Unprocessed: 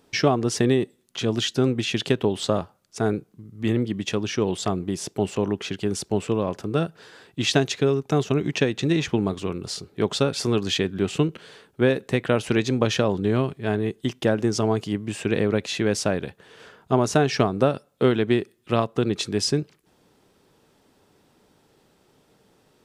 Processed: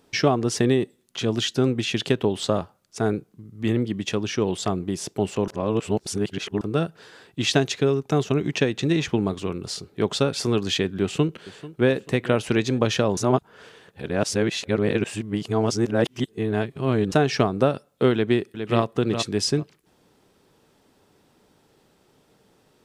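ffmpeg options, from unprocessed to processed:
ffmpeg -i in.wav -filter_complex "[0:a]asplit=2[link_01][link_02];[link_02]afade=type=in:start_time=11.02:duration=0.01,afade=type=out:start_time=11.9:duration=0.01,aecho=0:1:440|880|1320:0.133352|0.0533409|0.0213363[link_03];[link_01][link_03]amix=inputs=2:normalize=0,asplit=2[link_04][link_05];[link_05]afade=type=in:start_time=18.13:duration=0.01,afade=type=out:start_time=18.81:duration=0.01,aecho=0:1:410|820:0.421697|0.0632545[link_06];[link_04][link_06]amix=inputs=2:normalize=0,asplit=5[link_07][link_08][link_09][link_10][link_11];[link_07]atrim=end=5.482[link_12];[link_08]atrim=start=5.478:end=6.612,asetpts=PTS-STARTPTS,areverse[link_13];[link_09]atrim=start=6.608:end=13.172[link_14];[link_10]atrim=start=13.168:end=17.122,asetpts=PTS-STARTPTS,areverse[link_15];[link_11]atrim=start=17.118[link_16];[link_12][link_13]acrossfade=duration=0.004:curve1=hsin:curve2=hsin[link_17];[link_17][link_14]acrossfade=duration=0.004:curve1=hsin:curve2=hsin[link_18];[link_18][link_15]acrossfade=duration=0.004:curve1=hsin:curve2=hsin[link_19];[link_19][link_16]acrossfade=duration=0.004:curve1=hsin:curve2=hsin" out.wav

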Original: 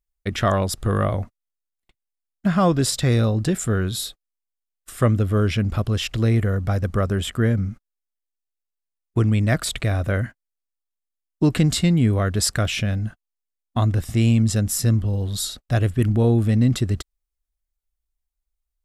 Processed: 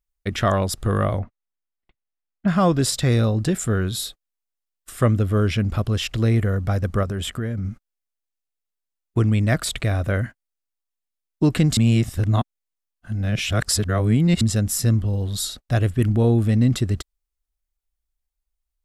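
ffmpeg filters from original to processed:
ffmpeg -i in.wav -filter_complex "[0:a]asettb=1/sr,asplit=3[link_01][link_02][link_03];[link_01]atrim=end=1.194[link_04];[link_02]atrim=start=1.19:end=2.48,asetpts=PTS-STARTPTS,afade=type=in:duration=0.004:curve=qsin,afade=type=out:start_time=1.286:duration=0.004:curve=qsin,lowpass=2600[link_05];[link_03]atrim=start=2.476[link_06];[link_04][link_05]acrossfade=duration=0.004:curve1=hsin:curve2=qsin[link_07];[link_07][link_06]acrossfade=duration=0.004:curve1=qsin:curve2=hsin,asettb=1/sr,asplit=3[link_08][link_09][link_10];[link_08]atrim=end=7.034[link_11];[link_09]atrim=start=7.03:end=7.65,asetpts=PTS-STARTPTS,afade=type=in:duration=0.004:curve=qsin,afade=type=out:start_time=0.616:duration=0.004:curve=qsin,acompressor=threshold=-22dB:ratio=6:attack=3.2:release=140:knee=1:detection=peak[link_12];[link_10]atrim=start=7.646[link_13];[link_11][link_12]acrossfade=duration=0.004:curve1=hsin:curve2=qsin[link_14];[link_14][link_13]acrossfade=duration=0.004:curve1=qsin:curve2=hsin,asplit=3[link_15][link_16][link_17];[link_15]atrim=end=11.772[link_18];[link_16]atrim=start=11.768:end=14.412,asetpts=PTS-STARTPTS,areverse[link_19];[link_17]atrim=start=14.408[link_20];[link_18][link_19]acrossfade=duration=0.004:curve1=hsin:curve2=hsin[link_21];[link_21][link_20]acrossfade=duration=0.004:curve1=hsin:curve2=hsin" out.wav

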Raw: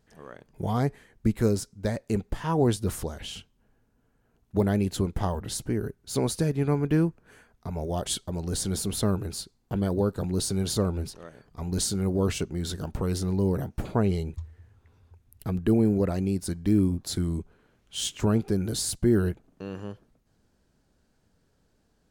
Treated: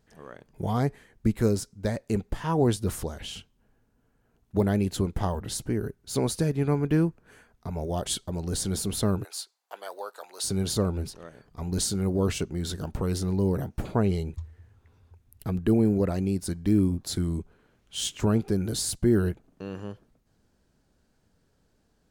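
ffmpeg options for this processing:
ffmpeg -i in.wav -filter_complex "[0:a]asplit=3[link_01][link_02][link_03];[link_01]afade=type=out:start_time=9.23:duration=0.02[link_04];[link_02]highpass=frequency=660:width=0.5412,highpass=frequency=660:width=1.3066,afade=type=in:start_time=9.23:duration=0.02,afade=type=out:start_time=10.43:duration=0.02[link_05];[link_03]afade=type=in:start_time=10.43:duration=0.02[link_06];[link_04][link_05][link_06]amix=inputs=3:normalize=0" out.wav

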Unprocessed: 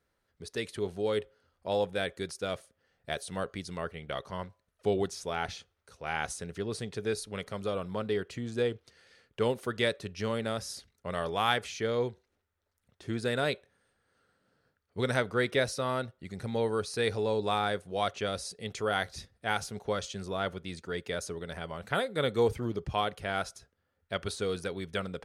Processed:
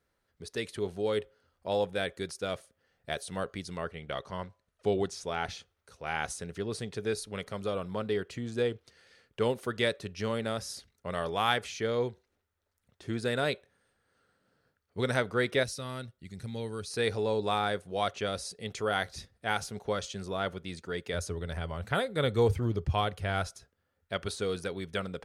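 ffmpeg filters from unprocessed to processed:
ffmpeg -i in.wav -filter_complex "[0:a]asettb=1/sr,asplit=3[link_01][link_02][link_03];[link_01]atrim=end=3.774[link_04];[link_02]atrim=start=3.77:end=5.45,asetpts=PTS-STARTPTS,afade=type=in:duration=0.004:curve=qsin,afade=type=out:start_time=1.676:duration=0.004:curve=qsin,lowpass=10000[link_05];[link_03]atrim=start=5.446[link_06];[link_04][link_05]acrossfade=duration=0.004:curve1=hsin:curve2=qsin[link_07];[link_07][link_06]acrossfade=duration=0.004:curve1=qsin:curve2=hsin,asettb=1/sr,asplit=3[link_08][link_09][link_10];[link_08]atrim=end=15.634[link_11];[link_09]atrim=start=15.63:end=16.91,asetpts=PTS-STARTPTS,afade=type=in:duration=0.004:curve=qsin,afade=type=out:start_time=1.276:duration=0.004:curve=qsin,equalizer=frequency=750:width=0.46:gain=-11.5[link_12];[link_10]atrim=start=16.906[link_13];[link_11][link_12]acrossfade=duration=0.004:curve1=hsin:curve2=qsin[link_14];[link_14][link_13]acrossfade=duration=0.004:curve1=qsin:curve2=hsin,asettb=1/sr,asplit=3[link_15][link_16][link_17];[link_15]atrim=end=21.134[link_18];[link_16]atrim=start=21.13:end=23.47,asetpts=PTS-STARTPTS,afade=type=in:duration=0.004:curve=qsin,afade=type=out:start_time=2.336:duration=0.004:curve=qsin,equalizer=frequency=88:width=1.5:gain=12[link_19];[link_17]atrim=start=23.466[link_20];[link_18][link_19]acrossfade=duration=0.004:curve1=hsin:curve2=qsin[link_21];[link_21][link_20]acrossfade=duration=0.004:curve1=qsin:curve2=hsin" out.wav

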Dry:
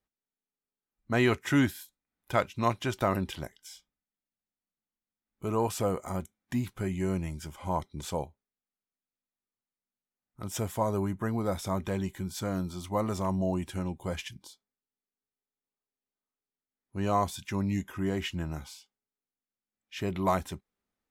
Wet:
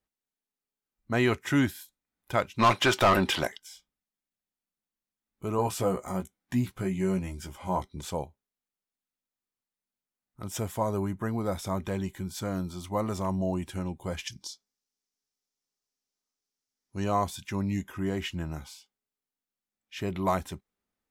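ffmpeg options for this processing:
ffmpeg -i in.wav -filter_complex "[0:a]asplit=3[link_01][link_02][link_03];[link_01]afade=type=out:start_time=2.58:duration=0.02[link_04];[link_02]asplit=2[link_05][link_06];[link_06]highpass=frequency=720:poles=1,volume=24dB,asoftclip=type=tanh:threshold=-12dB[link_07];[link_05][link_07]amix=inputs=2:normalize=0,lowpass=frequency=4100:poles=1,volume=-6dB,afade=type=in:start_time=2.58:duration=0.02,afade=type=out:start_time=3.57:duration=0.02[link_08];[link_03]afade=type=in:start_time=3.57:duration=0.02[link_09];[link_04][link_08][link_09]amix=inputs=3:normalize=0,asettb=1/sr,asplit=3[link_10][link_11][link_12];[link_10]atrim=end=5.574[link_13];[link_11]atrim=start=5.57:end=7.98,asetpts=PTS-STARTPTS,afade=type=in:duration=0.004:curve=qsin,afade=type=out:start_time=2.406:duration=0.004:curve=qsin,asplit=2[link_14][link_15];[link_15]adelay=16,volume=-5dB[link_16];[link_14][link_16]amix=inputs=2:normalize=0,atrim=end_sample=106281[link_17];[link_12]atrim=start=7.976[link_18];[link_13][link_17]acrossfade=duration=0.004:curve1=hsin:curve2=qsin[link_19];[link_19][link_18]acrossfade=duration=0.004:curve1=qsin:curve2=hsin,asettb=1/sr,asplit=3[link_20][link_21][link_22];[link_20]atrim=end=14.274[link_23];[link_21]atrim=start=14.27:end=17.04,asetpts=PTS-STARTPTS,afade=type=in:duration=0.004:curve=qsin,afade=type=out:start_time=2.766:duration=0.004:curve=qsin,equalizer=frequency=5600:width_type=o:width=0.87:gain=14.5[link_24];[link_22]atrim=start=17.036[link_25];[link_23][link_24]acrossfade=duration=0.004:curve1=hsin:curve2=qsin[link_26];[link_26][link_25]acrossfade=duration=0.004:curve1=qsin:curve2=hsin" out.wav

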